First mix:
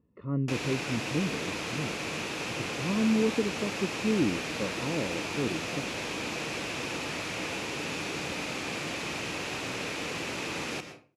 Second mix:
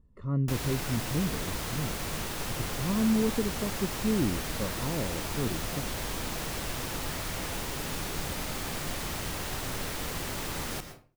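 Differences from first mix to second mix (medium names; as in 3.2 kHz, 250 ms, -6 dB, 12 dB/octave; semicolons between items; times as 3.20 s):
speech: remove distance through air 220 m; master: remove cabinet simulation 140–9300 Hz, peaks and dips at 310 Hz +5 dB, 480 Hz +4 dB, 2.5 kHz +10 dB, 8.7 kHz -9 dB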